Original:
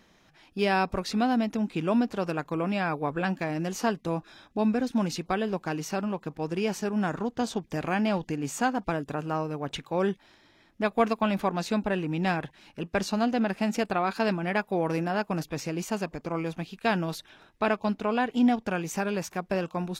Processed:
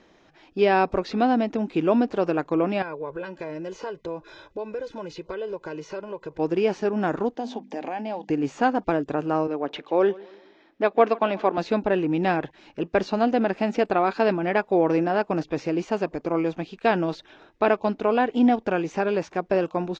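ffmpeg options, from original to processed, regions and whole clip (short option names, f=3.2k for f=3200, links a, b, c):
-filter_complex "[0:a]asettb=1/sr,asplit=3[a][b][c];[a]atrim=end=2.824[d];[b]atrim=start=2.82:end=6.39,asetpts=PTS-STARTPTS,afade=t=in:d=0.004:c=qsin,afade=t=out:st=3.566:d=0.004:c=qsin,aecho=1:1:2:0.86,atrim=end_sample=157437,acompressor=threshold=-39dB:ratio=3:attack=3.2:release=140:knee=1:detection=peak[e];[c]atrim=start=6.386[f];[d][e]acrossfade=d=0.004:c1=hsin:c2=qsin[g];[g][f]acrossfade=d=0.004:c1=qsin:c2=hsin,asettb=1/sr,asplit=3[h][i][j];[h]atrim=end=7.354[k];[i]atrim=start=7.35:end=8.3,asetpts=PTS-STARTPTS,afade=t=in:d=0.004:c=qsin,afade=t=out:st=0.946:d=0.004:c=qsin,bandreject=f=50:t=h:w=6,bandreject=f=100:t=h:w=6,bandreject=f=150:t=h:w=6,bandreject=f=200:t=h:w=6,bandreject=f=250:t=h:w=6,bandreject=f=300:t=h:w=6,acompressor=threshold=-32dB:ratio=6:attack=3.2:release=140:knee=1:detection=peak,highpass=f=230:w=0.5412,highpass=f=230:w=1.3066,equalizer=f=230:t=q:w=4:g=7,equalizer=f=360:t=q:w=4:g=-7,equalizer=f=810:t=q:w=4:g=7,equalizer=f=1.3k:t=q:w=4:g=-9,lowpass=f=8.3k:w=0.5412,lowpass=f=8.3k:w=1.3066[l];[j]atrim=start=8.296[m];[k][l]acrossfade=d=0.004:c1=hsin:c2=qsin[n];[n][m]acrossfade=d=0.004:c1=qsin:c2=hsin,asettb=1/sr,asplit=3[o][p][q];[o]atrim=end=9.474[r];[p]atrim=start=9.47:end=11.58,asetpts=PTS-STARTPTS,afade=t=in:d=0.004:c=qsin,afade=t=out:st=2.106:d=0.004:c=qsin,acrossover=split=210 6100:gain=0.126 1 0.0794[s][t][u];[s][t][u]amix=inputs=3:normalize=0,aecho=1:1:142|284|426:0.0794|0.0334|0.014,atrim=end_sample=93051[v];[q]atrim=start=11.576[w];[r][v]acrossfade=d=0.004:c1=hsin:c2=qsin[x];[x][w]acrossfade=d=0.004:c1=qsin:c2=hsin,acrossover=split=5000[y][z];[z]acompressor=threshold=-53dB:ratio=4:attack=1:release=60[aa];[y][aa]amix=inputs=2:normalize=0,firequalizer=gain_entry='entry(210,0);entry(310,9);entry(1100,3);entry(7000,-3);entry(11000,-28)':delay=0.05:min_phase=1"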